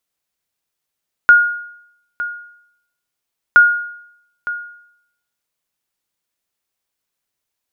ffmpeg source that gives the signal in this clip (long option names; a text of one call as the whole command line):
ffmpeg -f lavfi -i "aevalsrc='0.841*(sin(2*PI*1430*mod(t,2.27))*exp(-6.91*mod(t,2.27)/0.73)+0.178*sin(2*PI*1430*max(mod(t,2.27)-0.91,0))*exp(-6.91*max(mod(t,2.27)-0.91,0)/0.73))':duration=4.54:sample_rate=44100" out.wav